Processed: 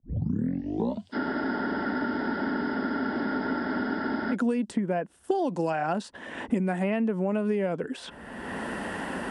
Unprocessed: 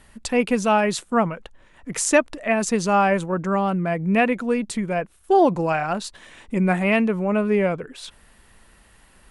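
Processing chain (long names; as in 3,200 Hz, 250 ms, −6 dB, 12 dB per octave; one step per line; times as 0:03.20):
turntable start at the beginning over 2.34 s
downward compressor, threshold −22 dBFS, peak gain reduction 10.5 dB
loudspeaker in its box 130–9,300 Hz, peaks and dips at 130 Hz −9 dB, 260 Hz +5 dB, 1,200 Hz −7 dB, 2,300 Hz −9 dB, 4,000 Hz −6 dB, 6,700 Hz −4 dB
frozen spectrum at 0:01.17, 3.17 s
multiband upward and downward compressor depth 100%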